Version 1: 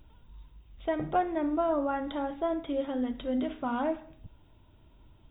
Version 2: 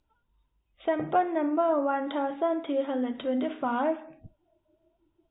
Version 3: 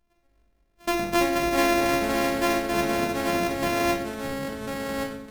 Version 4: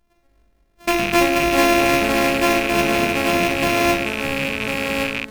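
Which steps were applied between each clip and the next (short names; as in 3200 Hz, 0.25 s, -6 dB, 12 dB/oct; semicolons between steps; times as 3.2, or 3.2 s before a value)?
tone controls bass -7 dB, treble -10 dB; spectral noise reduction 21 dB; in parallel at -1 dB: compressor, threshold -37 dBFS, peak gain reduction 14 dB; on the sum: gain +1.5 dB
sample sorter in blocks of 128 samples; shoebox room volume 410 m³, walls furnished, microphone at 1.5 m; echoes that change speed 0.104 s, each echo -4 st, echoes 2, each echo -6 dB
rattling part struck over -43 dBFS, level -17 dBFS; gain +6 dB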